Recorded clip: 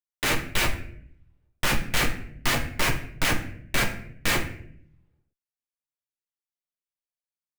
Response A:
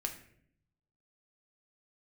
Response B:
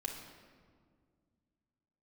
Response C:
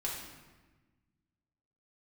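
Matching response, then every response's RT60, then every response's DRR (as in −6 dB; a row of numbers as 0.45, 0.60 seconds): A; 0.65, 2.0, 1.3 seconds; 2.5, 1.0, −4.5 decibels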